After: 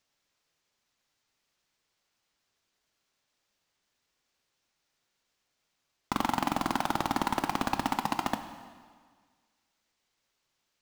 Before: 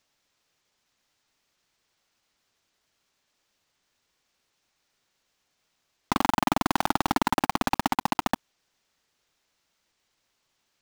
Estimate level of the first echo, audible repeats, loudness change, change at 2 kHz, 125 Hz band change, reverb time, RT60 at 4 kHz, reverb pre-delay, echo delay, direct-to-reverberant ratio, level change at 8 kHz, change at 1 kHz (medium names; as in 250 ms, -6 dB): no echo, no echo, -4.5 dB, -4.5 dB, -4.5 dB, 1.7 s, 1.6 s, 5 ms, no echo, 8.0 dB, -4.5 dB, -4.5 dB